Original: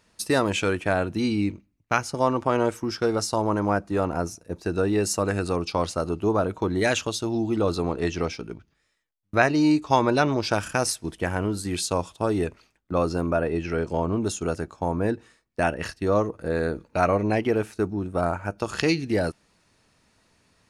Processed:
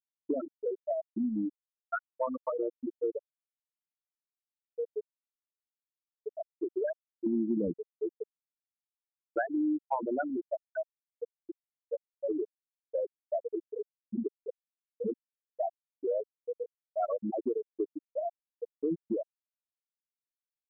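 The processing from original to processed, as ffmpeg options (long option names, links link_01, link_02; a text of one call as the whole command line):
ffmpeg -i in.wav -filter_complex "[0:a]asettb=1/sr,asplit=3[link_01][link_02][link_03];[link_01]atrim=end=3.224[link_04];[link_02]atrim=start=3.22:end=6.49,asetpts=PTS-STARTPTS,afade=type=in:duration=0.004:curve=qsin,afade=type=out:start_time=3.266:duration=0.004:curve=qsin,highpass=frequency=670:poles=1[link_05];[link_03]atrim=start=6.486[link_06];[link_04][link_05]acrossfade=duration=0.004:curve1=hsin:curve2=qsin[link_07];[link_07][link_06]acrossfade=duration=0.004:curve1=qsin:curve2=hsin,asettb=1/sr,asplit=3[link_08][link_09][link_10];[link_08]atrim=end=7.264[link_11];[link_09]atrim=start=7.26:end=7.78,asetpts=PTS-STARTPTS,afade=type=in:duration=0.004:curve=qsin,afade=type=out:start_time=0.516:duration=0.004:curve=qsin,equalizer=frequency=230:width_type=o:width=1.3:gain=10[link_12];[link_10]atrim=start=7.776[link_13];[link_11][link_12]acrossfade=duration=0.004:curve1=hsin:curve2=qsin[link_14];[link_14][link_13]acrossfade=duration=0.004:curve1=qsin:curve2=hsin,adynamicequalizer=threshold=0.00562:dfrequency=2200:dqfactor=3.1:tfrequency=2200:tqfactor=3.1:attack=5:release=100:ratio=0.375:range=2.5:mode=cutabove:tftype=bell,afftfilt=real='re*gte(hypot(re,im),0.501)':imag='im*gte(hypot(re,im),0.501)':win_size=1024:overlap=0.75,acompressor=threshold=-29dB:ratio=4" out.wav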